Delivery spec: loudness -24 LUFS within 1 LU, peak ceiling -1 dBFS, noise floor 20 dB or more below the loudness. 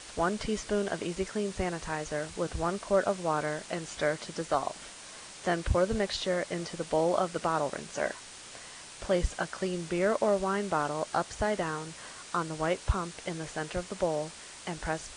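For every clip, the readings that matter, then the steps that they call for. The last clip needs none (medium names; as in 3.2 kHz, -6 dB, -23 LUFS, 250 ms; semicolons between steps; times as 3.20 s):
noise floor -48 dBFS; noise floor target -52 dBFS; loudness -31.5 LUFS; peak level -13.0 dBFS; loudness target -24.0 LUFS
-> noise print and reduce 6 dB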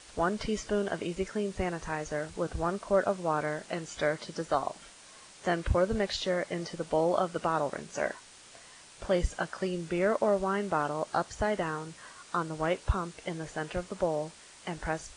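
noise floor -53 dBFS; loudness -32.0 LUFS; peak level -13.0 dBFS; loudness target -24.0 LUFS
-> trim +8 dB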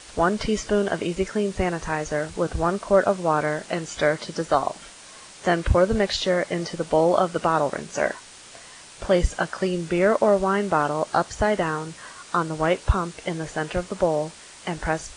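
loudness -24.0 LUFS; peak level -5.0 dBFS; noise floor -45 dBFS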